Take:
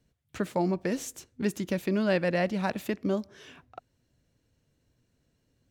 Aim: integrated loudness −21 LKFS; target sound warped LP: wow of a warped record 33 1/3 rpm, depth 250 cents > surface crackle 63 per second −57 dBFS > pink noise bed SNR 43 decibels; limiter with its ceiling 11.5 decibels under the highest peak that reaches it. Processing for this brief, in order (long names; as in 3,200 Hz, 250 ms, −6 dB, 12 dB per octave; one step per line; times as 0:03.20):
brickwall limiter −26 dBFS
wow of a warped record 33 1/3 rpm, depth 250 cents
surface crackle 63 per second −57 dBFS
pink noise bed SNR 43 dB
level +15 dB